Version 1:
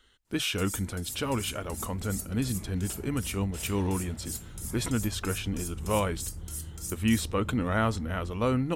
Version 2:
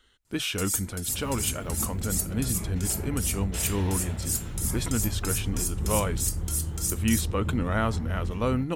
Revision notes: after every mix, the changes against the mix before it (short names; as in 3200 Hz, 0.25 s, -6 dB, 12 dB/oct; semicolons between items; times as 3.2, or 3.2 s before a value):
first sound +9.0 dB; second sound +9.5 dB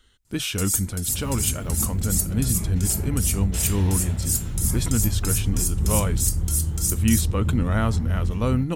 master: add tone controls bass +7 dB, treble +5 dB